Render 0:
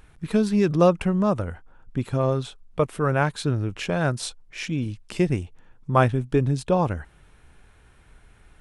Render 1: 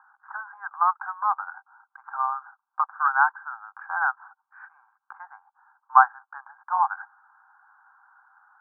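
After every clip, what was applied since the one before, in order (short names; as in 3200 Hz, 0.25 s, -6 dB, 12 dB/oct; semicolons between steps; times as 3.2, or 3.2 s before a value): Chebyshev band-pass 780–1600 Hz, order 5; gain +8 dB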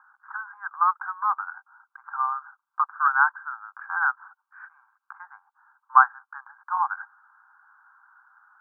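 resonant low shelf 800 Hz -12.5 dB, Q 1.5; gain -1 dB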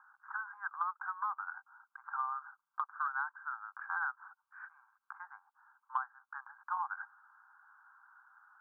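compressor 20:1, threshold -27 dBFS, peak gain reduction 19 dB; gain -5 dB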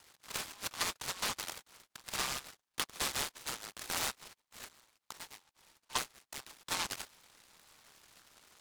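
noise-modulated delay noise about 2700 Hz, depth 0.22 ms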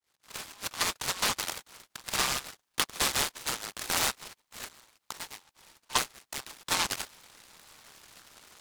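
opening faded in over 1.04 s; gain +7.5 dB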